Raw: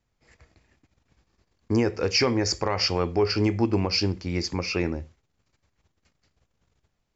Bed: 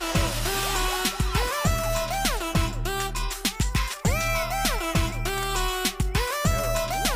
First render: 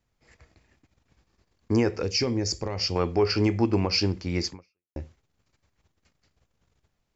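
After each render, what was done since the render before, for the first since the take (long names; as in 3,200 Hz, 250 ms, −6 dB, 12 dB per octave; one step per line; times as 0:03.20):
0:02.02–0:02.96: parametric band 1,300 Hz −12 dB 2.5 octaves
0:04.49–0:04.96: fade out exponential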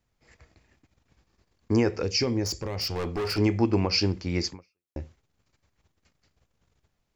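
0:02.44–0:03.38: hard clipping −26.5 dBFS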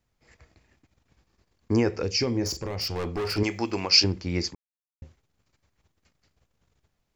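0:02.30–0:02.74: double-tracking delay 43 ms −9.5 dB
0:03.43–0:04.04: spectral tilt +3.5 dB per octave
0:04.55–0:05.02: silence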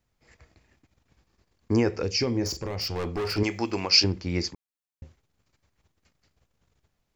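dynamic equaliser 10,000 Hz, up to −5 dB, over −45 dBFS, Q 1.3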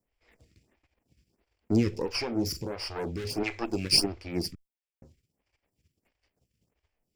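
lower of the sound and its delayed copy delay 0.38 ms
phaser with staggered stages 1.5 Hz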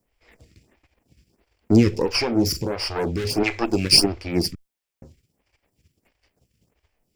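level +9 dB
brickwall limiter −2 dBFS, peak gain reduction 1.5 dB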